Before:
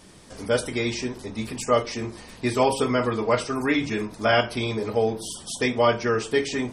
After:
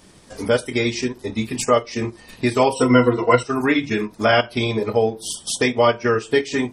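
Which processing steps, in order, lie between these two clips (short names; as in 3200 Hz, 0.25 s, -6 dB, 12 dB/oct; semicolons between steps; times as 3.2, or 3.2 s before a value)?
transient shaper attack +1 dB, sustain -7 dB; 2.75–3.43 ripple EQ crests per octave 2, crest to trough 17 dB; in parallel at +3 dB: compressor, threshold -29 dBFS, peak gain reduction 16 dB; on the sum: spectral noise reduction 8 dB; gain +1 dB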